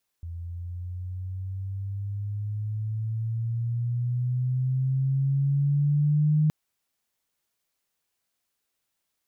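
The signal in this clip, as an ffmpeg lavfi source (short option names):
-f lavfi -i "aevalsrc='pow(10,(-18+15*(t/6.27-1))/20)*sin(2*PI*84*6.27/(10.5*log(2)/12)*(exp(10.5*log(2)/12*t/6.27)-1))':d=6.27:s=44100"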